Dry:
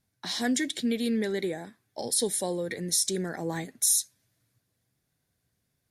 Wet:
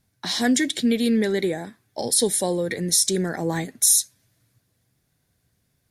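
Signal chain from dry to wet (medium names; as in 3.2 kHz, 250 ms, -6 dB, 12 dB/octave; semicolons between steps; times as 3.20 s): bass shelf 120 Hz +4 dB; trim +6.5 dB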